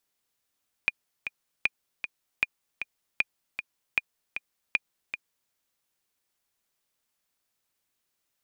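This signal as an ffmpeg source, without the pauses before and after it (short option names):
-f lavfi -i "aevalsrc='pow(10,(-9.5-9*gte(mod(t,2*60/155),60/155))/20)*sin(2*PI*2430*mod(t,60/155))*exp(-6.91*mod(t,60/155)/0.03)':d=4.64:s=44100"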